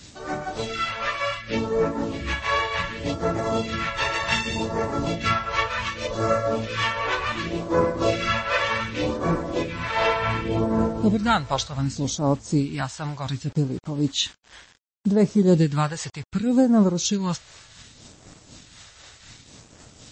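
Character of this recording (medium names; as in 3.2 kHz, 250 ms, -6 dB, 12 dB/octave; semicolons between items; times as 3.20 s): phasing stages 2, 0.67 Hz, lowest notch 230–3000 Hz; a quantiser's noise floor 8-bit, dither none; tremolo triangle 4 Hz, depth 55%; MP3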